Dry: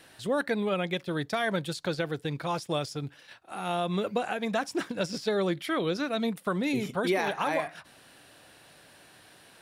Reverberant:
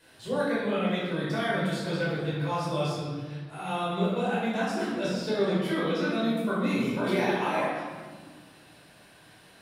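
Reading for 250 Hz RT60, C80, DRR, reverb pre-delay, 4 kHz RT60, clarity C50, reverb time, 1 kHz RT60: 2.5 s, 1.5 dB, -9.5 dB, 8 ms, 1.0 s, -1.5 dB, 1.5 s, 1.4 s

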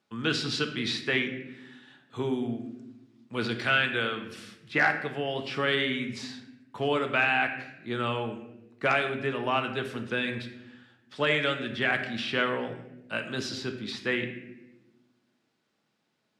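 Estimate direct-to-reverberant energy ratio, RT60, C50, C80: 5.0 dB, 0.95 s, 8.5 dB, 10.5 dB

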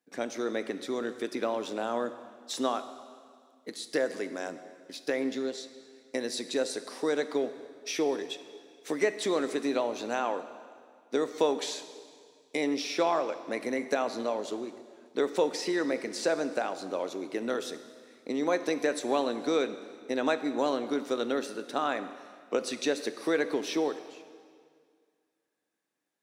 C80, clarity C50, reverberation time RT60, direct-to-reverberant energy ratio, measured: 13.0 dB, 12.0 dB, 2.0 s, 10.5 dB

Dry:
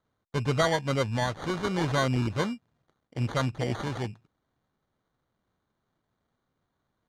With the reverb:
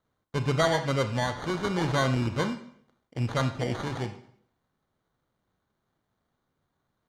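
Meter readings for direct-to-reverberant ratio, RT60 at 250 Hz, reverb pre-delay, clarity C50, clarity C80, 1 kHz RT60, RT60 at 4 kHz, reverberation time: 8.5 dB, 0.60 s, 23 ms, 10.5 dB, 14.0 dB, 0.60 s, 0.55 s, 0.65 s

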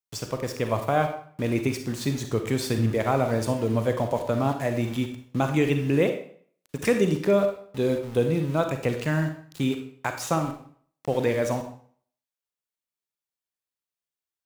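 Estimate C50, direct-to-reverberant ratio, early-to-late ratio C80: 7.5 dB, 5.5 dB, 11.0 dB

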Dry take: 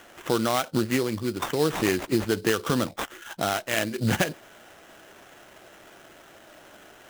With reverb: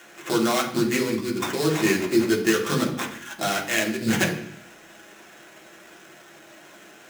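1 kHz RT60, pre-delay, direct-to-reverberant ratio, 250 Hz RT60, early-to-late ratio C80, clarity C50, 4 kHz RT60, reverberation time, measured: 0.70 s, 3 ms, -2.5 dB, 0.85 s, 12.0 dB, 9.0 dB, 0.85 s, 0.65 s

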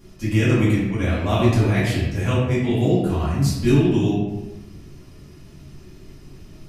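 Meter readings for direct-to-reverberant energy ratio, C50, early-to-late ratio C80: -9.5 dB, 0.0 dB, 3.0 dB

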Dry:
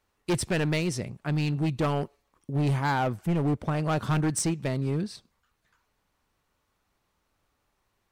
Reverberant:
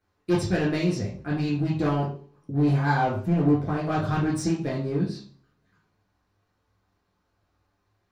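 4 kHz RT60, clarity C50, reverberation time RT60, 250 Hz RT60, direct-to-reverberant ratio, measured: 0.40 s, 6.0 dB, 0.45 s, 0.55 s, -5.5 dB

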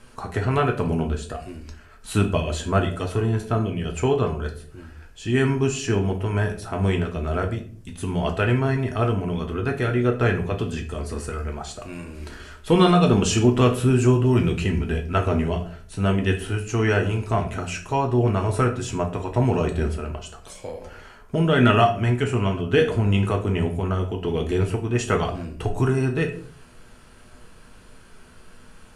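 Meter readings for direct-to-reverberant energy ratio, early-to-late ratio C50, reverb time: 2.0 dB, 11.0 dB, 0.50 s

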